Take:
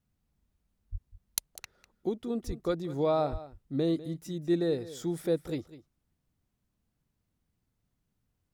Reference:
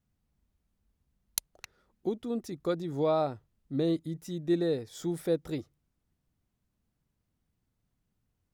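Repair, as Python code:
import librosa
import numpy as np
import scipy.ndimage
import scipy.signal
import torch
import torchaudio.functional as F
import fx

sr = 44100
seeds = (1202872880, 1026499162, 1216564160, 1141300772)

y = fx.highpass(x, sr, hz=140.0, slope=24, at=(0.91, 1.03), fade=0.02)
y = fx.highpass(y, sr, hz=140.0, slope=24, at=(2.46, 2.58), fade=0.02)
y = fx.highpass(y, sr, hz=140.0, slope=24, at=(3.31, 3.43), fade=0.02)
y = fx.fix_echo_inverse(y, sr, delay_ms=199, level_db=-16.0)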